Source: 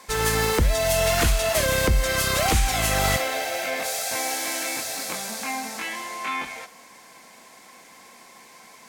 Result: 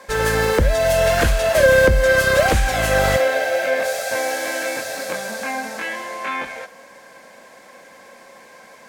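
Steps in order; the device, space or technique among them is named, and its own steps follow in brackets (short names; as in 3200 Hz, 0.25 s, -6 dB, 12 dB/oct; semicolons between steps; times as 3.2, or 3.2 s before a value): inside a helmet (high shelf 3700 Hz -7 dB; small resonant body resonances 550/1600 Hz, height 13 dB, ringing for 40 ms); gain +3 dB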